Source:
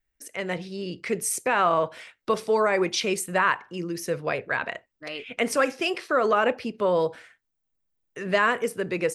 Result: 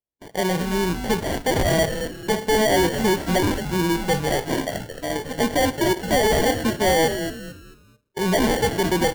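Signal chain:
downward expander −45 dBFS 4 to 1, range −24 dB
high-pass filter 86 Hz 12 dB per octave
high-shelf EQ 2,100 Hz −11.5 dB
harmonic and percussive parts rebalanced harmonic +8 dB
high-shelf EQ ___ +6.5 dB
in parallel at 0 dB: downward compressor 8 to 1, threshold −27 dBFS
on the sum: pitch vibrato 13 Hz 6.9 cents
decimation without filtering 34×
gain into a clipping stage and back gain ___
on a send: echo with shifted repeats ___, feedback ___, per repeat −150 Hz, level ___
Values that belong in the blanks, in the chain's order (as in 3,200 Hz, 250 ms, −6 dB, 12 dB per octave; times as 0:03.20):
5,400 Hz, 16 dB, 221 ms, 35%, −8.5 dB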